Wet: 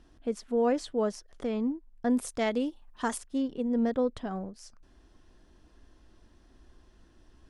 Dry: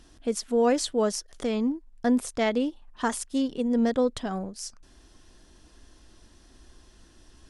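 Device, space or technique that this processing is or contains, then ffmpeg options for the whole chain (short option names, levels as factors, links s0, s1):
through cloth: -filter_complex "[0:a]asettb=1/sr,asplit=3[s0][s1][s2];[s0]atrim=end=2.104[s3];[s1]atrim=start=2.1:end=3.18,asetpts=PTS-STARTPTS,afade=t=in:d=0.004:c=qsin,afade=t=out:st=1.076:d=0.004:c=qsin,aemphasis=mode=production:type=75kf[s4];[s2]atrim=start=3.176[s5];[s3][s4]acrossfade=d=0.004:c1=hsin:c2=qsin[s6];[s6][s5]acrossfade=d=0.004:c1=qsin:c2=hsin,highshelf=f=3600:g=-13.5,volume=0.668"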